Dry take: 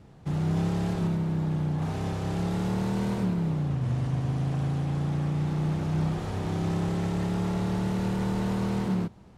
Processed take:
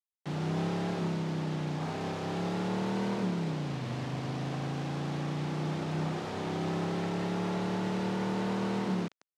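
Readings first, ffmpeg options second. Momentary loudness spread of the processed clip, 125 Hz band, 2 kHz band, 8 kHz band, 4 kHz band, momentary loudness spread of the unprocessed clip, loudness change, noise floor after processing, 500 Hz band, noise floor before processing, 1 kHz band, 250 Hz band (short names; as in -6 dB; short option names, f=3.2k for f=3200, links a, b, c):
3 LU, -7.5 dB, +1.0 dB, n/a, +1.5 dB, 2 LU, -5.0 dB, -80 dBFS, -0.5 dB, -50 dBFS, 0.0 dB, -4.5 dB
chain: -af "acrusher=bits=6:mix=0:aa=0.000001,highpass=220,lowpass=4.7k"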